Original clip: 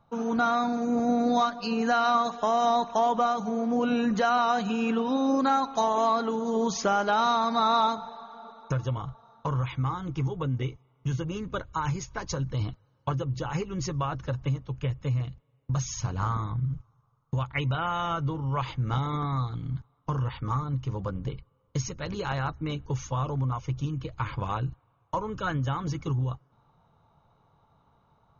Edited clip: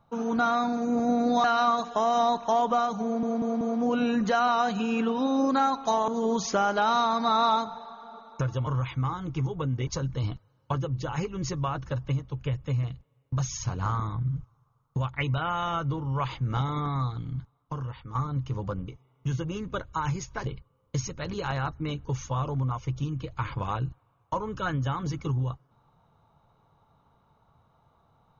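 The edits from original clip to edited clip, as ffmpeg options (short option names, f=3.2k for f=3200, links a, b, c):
-filter_complex "[0:a]asplit=11[a][b][c][d][e][f][g][h][i][j][k];[a]atrim=end=1.442[l];[b]atrim=start=1.908:end=3.702[m];[c]atrim=start=3.508:end=3.702[n];[d]atrim=start=3.508:end=3.702[o];[e]atrim=start=3.508:end=5.982[p];[f]atrim=start=6.388:end=8.982[q];[g]atrim=start=9.478:end=10.682[r];[h]atrim=start=12.238:end=20.52,asetpts=PTS-STARTPTS,afade=t=out:st=7.272:d=1.01:silence=0.298538[s];[i]atrim=start=20.52:end=21.252,asetpts=PTS-STARTPTS,afade=t=in:d=0.004:c=hsin:silence=0.298538[t];[j]atrim=start=10.678:end=12.242[u];[k]atrim=start=21.248[v];[l][m]acrossfade=d=0.004:c1=hsin:c2=hsin[w];[w][n]acrossfade=d=0.004:c1=hsin:c2=hsin[x];[x][o]acrossfade=d=0.004:c1=hsin:c2=hsin[y];[y][p]acrossfade=d=0.004:c1=hsin:c2=hsin[z];[z][q]acrossfade=d=0.004:c1=hsin:c2=hsin[aa];[aa][r]acrossfade=d=0.004:c1=hsin:c2=hsin[ab];[s][t]concat=n=2:v=0:a=1[ac];[ab][ac]acrossfade=d=0.004:c1=hsin:c2=hsin[ad];[ad][u]acrossfade=d=0.004:c1=hsin:c2=hsin[ae];[ae][v]acrossfade=d=0.004:c1=hsin:c2=hsin"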